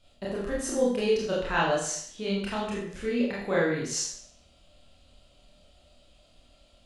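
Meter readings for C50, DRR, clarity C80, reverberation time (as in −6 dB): 2.0 dB, −6.5 dB, 5.5 dB, 0.60 s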